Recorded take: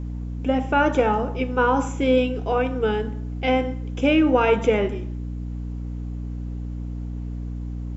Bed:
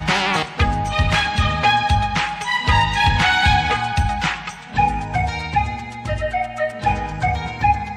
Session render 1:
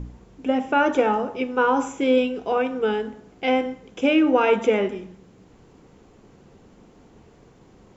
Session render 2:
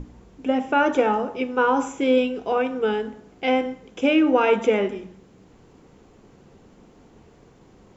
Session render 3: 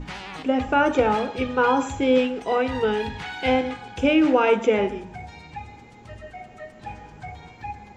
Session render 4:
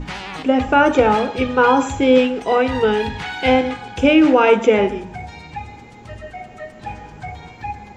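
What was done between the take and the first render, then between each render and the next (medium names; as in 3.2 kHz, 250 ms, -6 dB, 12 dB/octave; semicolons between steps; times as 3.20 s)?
de-hum 60 Hz, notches 5
hum notches 60/120/180 Hz
add bed -18 dB
trim +6 dB; peak limiter -2 dBFS, peak gain reduction 1.5 dB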